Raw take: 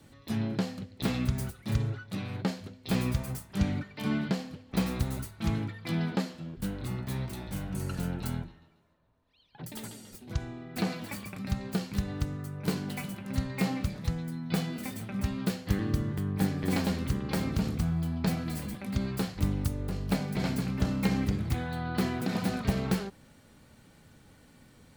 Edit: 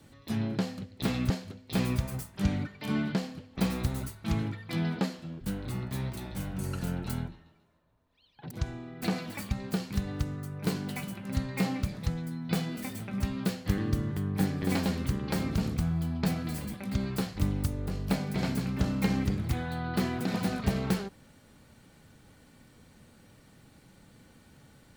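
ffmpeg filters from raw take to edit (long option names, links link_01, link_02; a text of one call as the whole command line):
ffmpeg -i in.wav -filter_complex "[0:a]asplit=4[link_01][link_02][link_03][link_04];[link_01]atrim=end=1.302[link_05];[link_02]atrim=start=2.458:end=9.672[link_06];[link_03]atrim=start=10.248:end=11.252[link_07];[link_04]atrim=start=11.518[link_08];[link_05][link_06]acrossfade=duration=0.004:curve1=hsin:curve2=hsin[link_09];[link_09][link_07]acrossfade=duration=0.004:curve1=hsin:curve2=hsin[link_10];[link_10][link_08]acrossfade=duration=0.004:curve1=hsin:curve2=hsin" out.wav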